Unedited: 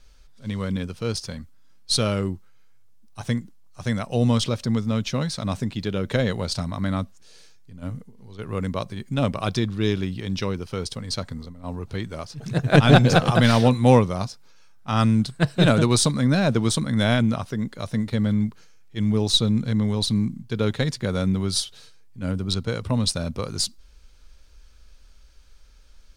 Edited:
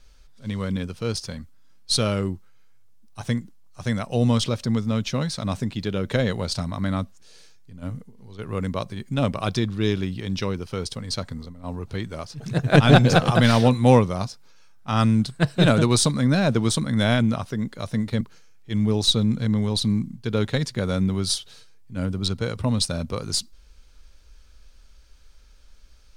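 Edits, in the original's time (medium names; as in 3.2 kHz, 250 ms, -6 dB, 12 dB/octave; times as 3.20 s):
18.21–18.47 s: delete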